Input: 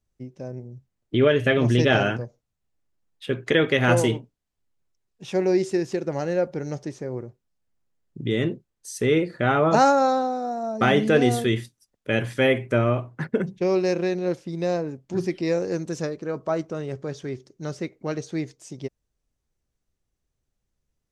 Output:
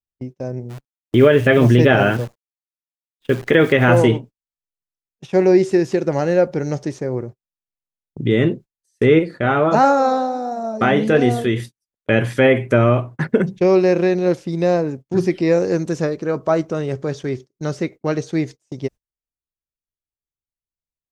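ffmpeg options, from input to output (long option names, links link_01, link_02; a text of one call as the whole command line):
ffmpeg -i in.wav -filter_complex "[0:a]asplit=3[link_01][link_02][link_03];[link_01]afade=type=out:start_time=0.69:duration=0.02[link_04];[link_02]acrusher=bits=8:dc=4:mix=0:aa=0.000001,afade=type=in:start_time=0.69:duration=0.02,afade=type=out:start_time=4:duration=0.02[link_05];[link_03]afade=type=in:start_time=4:duration=0.02[link_06];[link_04][link_05][link_06]amix=inputs=3:normalize=0,asettb=1/sr,asplit=3[link_07][link_08][link_09];[link_07]atrim=end=9.194[link_10];[link_08]atrim=start=9.19:end=11.6,asetpts=PTS-STARTPTS,afade=type=in:duration=0.004:curve=qsin,afade=type=out:start_time=2.406:duration=0.004:curve=qsin,flanger=delay=5.8:depth=6.8:regen=-75:speed=1.5:shape=triangular[link_11];[link_09]atrim=start=11.596[link_12];[link_10][link_11]acrossfade=duration=0.004:curve1=hsin:curve2=qsin[link_13];[link_13][link_12]acrossfade=duration=0.004:curve1=qsin:curve2=hsin,acrossover=split=2700[link_14][link_15];[link_15]acompressor=threshold=-44dB:ratio=4:attack=1:release=60[link_16];[link_14][link_16]amix=inputs=2:normalize=0,agate=range=-29dB:threshold=-40dB:ratio=16:detection=peak,alimiter=level_in=9.5dB:limit=-1dB:release=50:level=0:latency=1,volume=-1.5dB" out.wav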